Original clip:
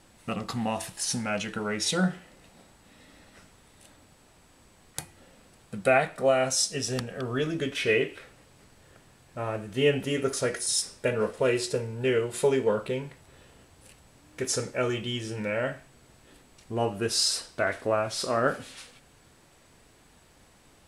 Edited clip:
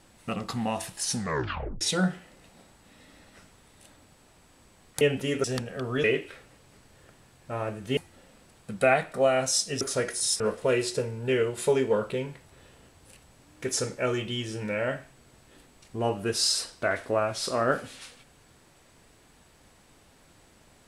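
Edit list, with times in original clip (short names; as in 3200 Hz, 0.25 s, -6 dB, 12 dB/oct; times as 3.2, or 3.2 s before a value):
1.16 tape stop 0.65 s
5.01–6.85 swap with 9.84–10.27
7.45–7.91 cut
10.86–11.16 cut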